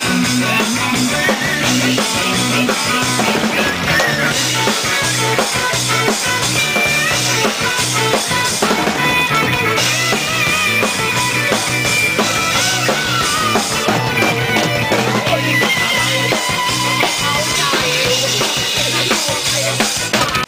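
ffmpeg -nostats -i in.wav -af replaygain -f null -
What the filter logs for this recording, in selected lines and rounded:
track_gain = -3.8 dB
track_peak = 0.565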